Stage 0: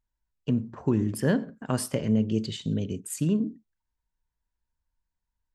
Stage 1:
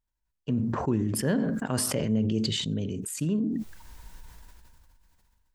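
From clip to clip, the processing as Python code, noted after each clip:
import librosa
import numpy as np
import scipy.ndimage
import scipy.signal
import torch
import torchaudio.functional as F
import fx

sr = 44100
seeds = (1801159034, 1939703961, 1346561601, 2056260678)

y = fx.sustainer(x, sr, db_per_s=21.0)
y = y * 10.0 ** (-3.0 / 20.0)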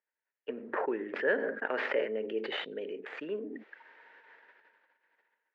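y = fx.tracing_dist(x, sr, depth_ms=0.19)
y = fx.cabinet(y, sr, low_hz=430.0, low_slope=24, high_hz=2400.0, hz=(440.0, 720.0, 1100.0, 1800.0), db=(3, -6, -7, 7))
y = fx.notch(y, sr, hz=990.0, q=25.0)
y = y * 10.0 ** (3.0 / 20.0)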